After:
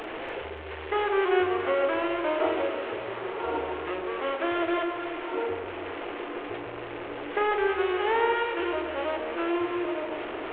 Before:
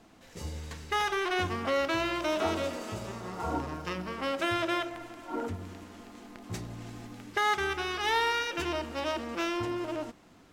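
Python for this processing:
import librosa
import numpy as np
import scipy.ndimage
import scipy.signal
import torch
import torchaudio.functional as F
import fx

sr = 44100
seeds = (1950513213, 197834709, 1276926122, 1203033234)

y = fx.delta_mod(x, sr, bps=16000, step_db=-30.5)
y = fx.low_shelf_res(y, sr, hz=280.0, db=-10.5, q=3.0)
y = fx.doubler(y, sr, ms=41.0, db=-11.5)
y = fx.echo_alternate(y, sr, ms=144, hz=970.0, feedback_pct=51, wet_db=-4.0)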